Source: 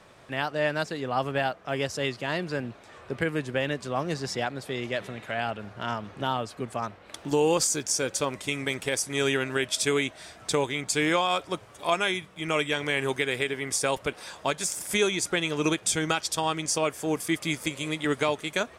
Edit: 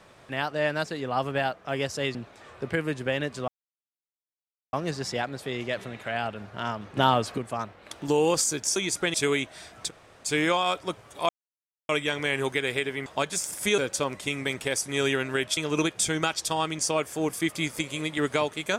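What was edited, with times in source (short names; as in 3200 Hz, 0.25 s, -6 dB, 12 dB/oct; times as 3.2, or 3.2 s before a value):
2.15–2.63 cut
3.96 insert silence 1.25 s
6.2–6.61 gain +7 dB
7.99–9.78 swap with 15.06–15.44
10.52–10.9 room tone, crossfade 0.06 s
11.93–12.53 mute
13.7–14.34 cut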